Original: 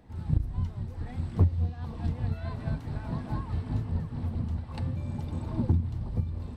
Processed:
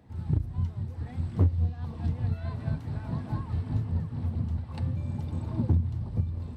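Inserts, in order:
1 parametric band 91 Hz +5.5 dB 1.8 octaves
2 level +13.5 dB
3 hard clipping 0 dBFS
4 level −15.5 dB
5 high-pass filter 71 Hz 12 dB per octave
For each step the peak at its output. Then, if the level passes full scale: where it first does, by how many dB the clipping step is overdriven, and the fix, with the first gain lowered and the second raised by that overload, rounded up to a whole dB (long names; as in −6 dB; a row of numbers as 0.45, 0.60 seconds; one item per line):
−9.0, +4.5, 0.0, −15.5, −11.0 dBFS
step 2, 4.5 dB
step 2 +8.5 dB, step 4 −10.5 dB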